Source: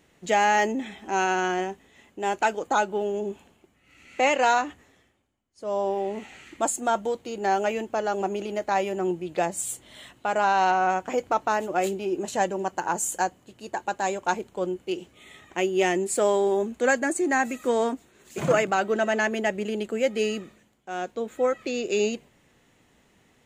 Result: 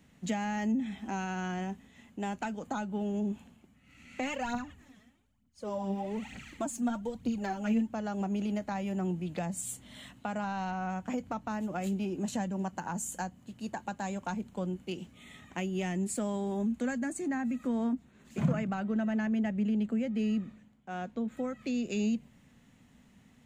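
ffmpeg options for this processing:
-filter_complex "[0:a]asplit=3[a][b][c];[a]afade=t=out:st=4.21:d=0.02[d];[b]aphaser=in_gain=1:out_gain=1:delay=4.9:decay=0.64:speed=1.1:type=triangular,afade=t=in:st=4.21:d=0.02,afade=t=out:st=7.87:d=0.02[e];[c]afade=t=in:st=7.87:d=0.02[f];[d][e][f]amix=inputs=3:normalize=0,asettb=1/sr,asplit=3[g][h][i];[g]atrim=end=17.284[j];[h]atrim=start=17.28:end=21.37,asetpts=PTS-STARTPTS,afade=t=in:d=0.004:c=qsin,afade=t=out:st=4.086:d=0.004:c=qsin,highshelf=f=4.5k:g=-11[k];[i]atrim=start=21.366[l];[j][k]acrossfade=d=0.004:c1=hsin:c2=qsin[m];[m][l]acrossfade=d=0.004:c1=qsin:c2=hsin,lowshelf=f=290:t=q:w=3:g=6,acrossover=split=200[n][o];[o]acompressor=threshold=-30dB:ratio=6[p];[n][p]amix=inputs=2:normalize=0,volume=-4dB"

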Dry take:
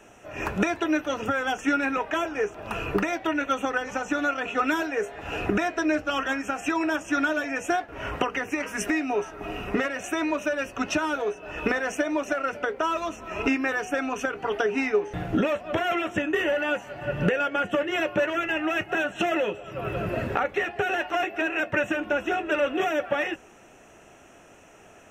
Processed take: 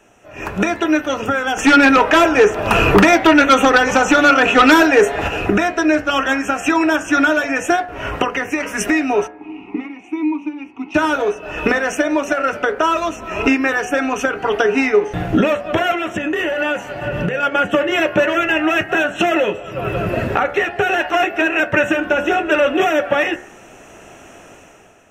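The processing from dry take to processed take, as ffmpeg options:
-filter_complex "[0:a]asplit=3[a][b][c];[a]afade=t=out:st=1.56:d=0.02[d];[b]aeval=exprs='0.237*sin(PI/2*2*val(0)/0.237)':c=same,afade=t=in:st=1.56:d=0.02,afade=t=out:st=5.27:d=0.02[e];[c]afade=t=in:st=5.27:d=0.02[f];[d][e][f]amix=inputs=3:normalize=0,asplit=3[g][h][i];[g]afade=t=out:st=9.26:d=0.02[j];[h]asplit=3[k][l][m];[k]bandpass=f=300:t=q:w=8,volume=0dB[n];[l]bandpass=f=870:t=q:w=8,volume=-6dB[o];[m]bandpass=f=2.24k:t=q:w=8,volume=-9dB[p];[n][o][p]amix=inputs=3:normalize=0,afade=t=in:st=9.26:d=0.02,afade=t=out:st=10.94:d=0.02[q];[i]afade=t=in:st=10.94:d=0.02[r];[j][q][r]amix=inputs=3:normalize=0,asettb=1/sr,asplit=3[s][t][u];[s]atrim=end=15.914[v];[t]atrim=start=15.91:end=17.43,asetpts=PTS-STARTPTS,afade=t=in:d=0.004:c=qsin,afade=t=out:st=1.516:d=0.004:c=qsin,acompressor=threshold=-26dB:ratio=6:attack=3.2:release=140:knee=1:detection=peak[w];[u]atrim=start=17.426[x];[v][w]acrossfade=d=0.004:c1=hsin:c2=qsin[y];[y][x]acrossfade=d=0.004:c1=qsin:c2=hsin,bandreject=f=71.98:t=h:w=4,bandreject=f=143.96:t=h:w=4,bandreject=f=215.94:t=h:w=4,bandreject=f=287.92:t=h:w=4,bandreject=f=359.9:t=h:w=4,bandreject=f=431.88:t=h:w=4,bandreject=f=503.86:t=h:w=4,bandreject=f=575.84:t=h:w=4,bandreject=f=647.82:t=h:w=4,bandreject=f=719.8:t=h:w=4,bandreject=f=791.78:t=h:w=4,bandreject=f=863.76:t=h:w=4,bandreject=f=935.74:t=h:w=4,bandreject=f=1.00772k:t=h:w=4,bandreject=f=1.0797k:t=h:w=4,bandreject=f=1.15168k:t=h:w=4,bandreject=f=1.22366k:t=h:w=4,bandreject=f=1.29564k:t=h:w=4,bandreject=f=1.36762k:t=h:w=4,bandreject=f=1.4396k:t=h:w=4,bandreject=f=1.51158k:t=h:w=4,bandreject=f=1.58356k:t=h:w=4,bandreject=f=1.65554k:t=h:w=4,bandreject=f=1.72752k:t=h:w=4,bandreject=f=1.7995k:t=h:w=4,bandreject=f=1.87148k:t=h:w=4,bandreject=f=1.94346k:t=h:w=4,bandreject=f=2.01544k:t=h:w=4,bandreject=f=2.08742k:t=h:w=4,bandreject=f=2.1594k:t=h:w=4,bandreject=f=2.23138k:t=h:w=4,dynaudnorm=f=160:g=7:m=11.5dB"

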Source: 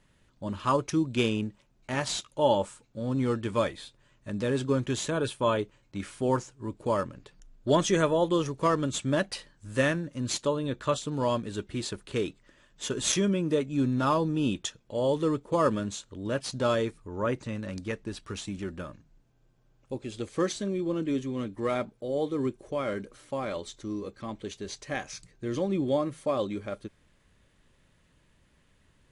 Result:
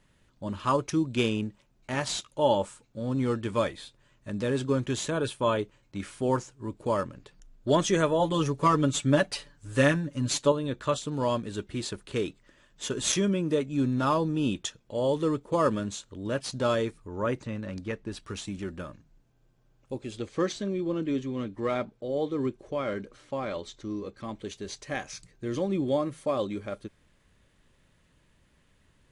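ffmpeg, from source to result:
-filter_complex "[0:a]asettb=1/sr,asplit=3[a][b][c];[a]atrim=end=8.194[d];[b]atrim=start=8.19:end=10.52,asetpts=PTS-STARTPTS,afade=t=in:d=0.004:c=qsin,afade=t=out:st=2.326:d=0.004:c=qsin,aecho=1:1:7:0.84,atrim=end_sample=102753[e];[c]atrim=start=10.516[f];[d][e]acrossfade=d=0.004:c1=hsin:c2=qsin[g];[g][f]acrossfade=d=0.004:c1=qsin:c2=hsin,asettb=1/sr,asplit=3[h][i][j];[h]atrim=end=17.434[k];[i]atrim=start=17.43:end=18.12,asetpts=PTS-STARTPTS,afade=t=in:d=0.004:c=qsin,afade=t=out:st=0.686:d=0.004:c=qsin,lowpass=f=3.7k:p=1[l];[j]atrim=start=18.116[m];[k][l]acrossfade=d=0.004:c1=hsin:c2=qsin[n];[n][m]acrossfade=d=0.004:c1=qsin:c2=hsin,asettb=1/sr,asplit=3[o][p][q];[o]atrim=end=20.174[r];[p]atrim=start=20.17:end=24.17,asetpts=PTS-STARTPTS,afade=t=in:d=0.004:c=qsin,afade=t=out:st=3.996:d=0.004:c=qsin,lowpass=6.2k[s];[q]atrim=start=24.166[t];[r][s]acrossfade=d=0.004:c1=hsin:c2=qsin[u];[u][t]acrossfade=d=0.004:c1=qsin:c2=hsin"

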